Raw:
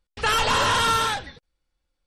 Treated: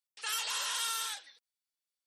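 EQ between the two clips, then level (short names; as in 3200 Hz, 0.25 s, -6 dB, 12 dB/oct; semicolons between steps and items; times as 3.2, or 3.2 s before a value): HPF 300 Hz 12 dB/oct; differentiator; -4.0 dB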